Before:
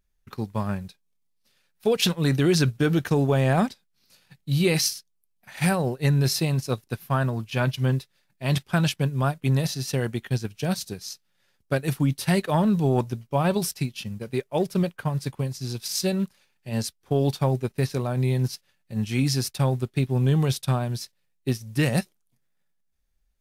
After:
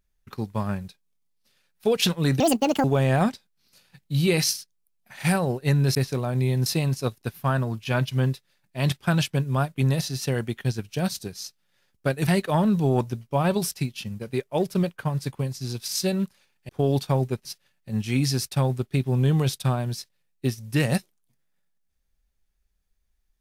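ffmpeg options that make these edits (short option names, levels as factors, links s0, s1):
-filter_complex "[0:a]asplit=8[s0][s1][s2][s3][s4][s5][s6][s7];[s0]atrim=end=2.404[s8];[s1]atrim=start=2.4:end=3.21,asetpts=PTS-STARTPTS,asetrate=81144,aresample=44100[s9];[s2]atrim=start=3.206:end=6.322[s10];[s3]atrim=start=17.768:end=18.482[s11];[s4]atrim=start=6.318:end=11.932[s12];[s5]atrim=start=12.268:end=16.692[s13];[s6]atrim=start=17.008:end=17.772[s14];[s7]atrim=start=18.478[s15];[s8][s9]acrossfade=d=0.004:c1=hsin:c2=hsin[s16];[s16][s10]acrossfade=d=0.004:c1=hsin:c2=hsin[s17];[s17][s11]acrossfade=d=0.004:c1=hsin:c2=hsin[s18];[s18][s12]acrossfade=d=0.004:c1=hsin:c2=hsin[s19];[s19][s13]acrossfade=d=0.004:c1=hsin:c2=hsin[s20];[s20][s14]acrossfade=d=0.004:c1=hsin:c2=hsin[s21];[s21][s15]acrossfade=d=0.004:c1=hsin:c2=hsin"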